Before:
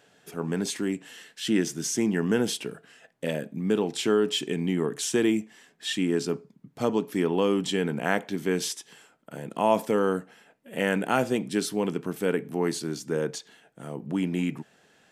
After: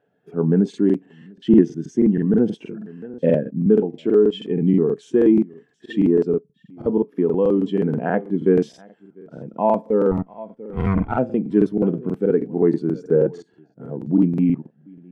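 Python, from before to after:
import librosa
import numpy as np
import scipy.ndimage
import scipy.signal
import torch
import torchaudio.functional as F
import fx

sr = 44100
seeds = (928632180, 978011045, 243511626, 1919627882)

p1 = fx.lower_of_two(x, sr, delay_ms=0.89, at=(10.11, 11.12))
p2 = fx.lowpass(p1, sr, hz=1200.0, slope=6)
p3 = 10.0 ** (-21.0 / 20.0) * np.tanh(p2 / 10.0 ** (-21.0 / 20.0))
p4 = p2 + (p3 * librosa.db_to_amplitude(-6.5))
p5 = p4 + 10.0 ** (-17.5 / 20.0) * np.pad(p4, (int(699 * sr / 1000.0), 0))[:len(p4)]
p6 = fx.rider(p5, sr, range_db=4, speed_s=0.5)
p7 = fx.buffer_crackle(p6, sr, first_s=0.69, period_s=0.16, block=2048, kind='repeat')
p8 = fx.spectral_expand(p7, sr, expansion=1.5)
y = p8 * librosa.db_to_amplitude(8.5)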